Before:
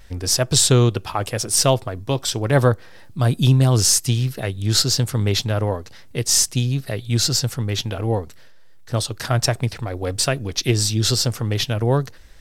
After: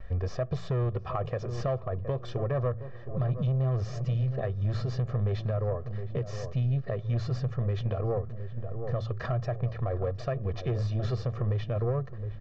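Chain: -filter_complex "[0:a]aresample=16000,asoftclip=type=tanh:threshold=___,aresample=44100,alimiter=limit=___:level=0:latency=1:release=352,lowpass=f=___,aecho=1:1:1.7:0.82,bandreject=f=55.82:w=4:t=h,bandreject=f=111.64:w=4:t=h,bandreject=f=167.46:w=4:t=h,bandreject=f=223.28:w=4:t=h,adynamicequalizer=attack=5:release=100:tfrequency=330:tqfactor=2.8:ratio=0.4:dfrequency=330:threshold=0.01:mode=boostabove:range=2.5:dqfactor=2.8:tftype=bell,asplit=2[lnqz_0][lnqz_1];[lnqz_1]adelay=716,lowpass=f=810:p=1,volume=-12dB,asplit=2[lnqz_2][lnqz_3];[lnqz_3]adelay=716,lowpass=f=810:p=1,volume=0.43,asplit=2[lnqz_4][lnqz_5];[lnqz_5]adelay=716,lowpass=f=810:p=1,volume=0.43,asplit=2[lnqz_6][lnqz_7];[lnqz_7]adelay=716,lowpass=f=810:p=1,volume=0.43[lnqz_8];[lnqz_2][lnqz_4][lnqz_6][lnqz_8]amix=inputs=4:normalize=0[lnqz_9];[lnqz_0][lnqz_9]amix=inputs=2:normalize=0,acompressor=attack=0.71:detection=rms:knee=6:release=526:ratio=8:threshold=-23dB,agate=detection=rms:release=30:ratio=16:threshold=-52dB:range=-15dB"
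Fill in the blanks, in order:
-15dB, -16dB, 1.4k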